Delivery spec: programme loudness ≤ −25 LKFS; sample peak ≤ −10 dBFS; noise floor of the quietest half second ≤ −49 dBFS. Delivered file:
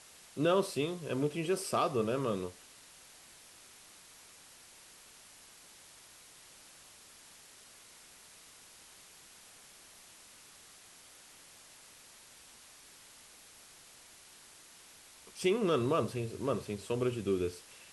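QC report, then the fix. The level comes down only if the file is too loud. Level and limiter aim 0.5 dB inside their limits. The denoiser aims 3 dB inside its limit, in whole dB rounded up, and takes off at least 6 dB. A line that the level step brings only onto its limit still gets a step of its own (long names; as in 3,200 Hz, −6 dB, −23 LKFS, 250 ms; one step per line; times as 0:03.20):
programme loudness −33.5 LKFS: in spec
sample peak −17.5 dBFS: in spec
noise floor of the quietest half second −57 dBFS: in spec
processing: no processing needed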